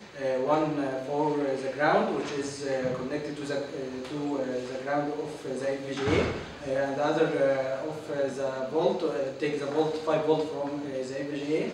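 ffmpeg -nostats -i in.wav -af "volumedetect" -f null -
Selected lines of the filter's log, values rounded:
mean_volume: -28.9 dB
max_volume: -10.5 dB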